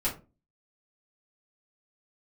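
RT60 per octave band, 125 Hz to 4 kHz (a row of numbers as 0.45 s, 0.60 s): 0.40 s, 0.45 s, 0.35 s, 0.25 s, 0.25 s, 0.15 s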